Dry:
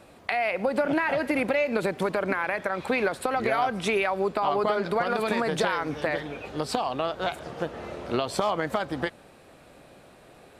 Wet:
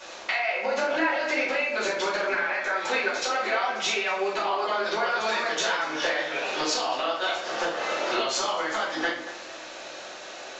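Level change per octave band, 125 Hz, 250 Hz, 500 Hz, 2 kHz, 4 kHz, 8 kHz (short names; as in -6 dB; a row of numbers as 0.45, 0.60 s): -16.0, -6.0, -2.0, +4.0, +8.0, +9.0 dB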